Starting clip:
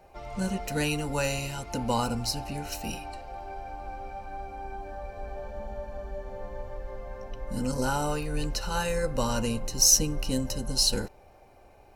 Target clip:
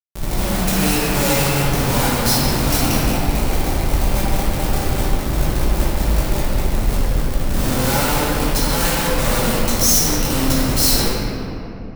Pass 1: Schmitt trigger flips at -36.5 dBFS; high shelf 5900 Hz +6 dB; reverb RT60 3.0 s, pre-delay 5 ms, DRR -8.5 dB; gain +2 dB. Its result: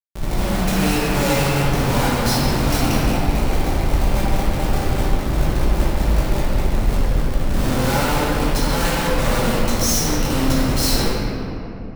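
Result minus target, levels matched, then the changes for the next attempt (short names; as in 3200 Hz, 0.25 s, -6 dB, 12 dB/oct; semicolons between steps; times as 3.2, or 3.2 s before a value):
8000 Hz band -3.5 dB
change: high shelf 5900 Hz +15 dB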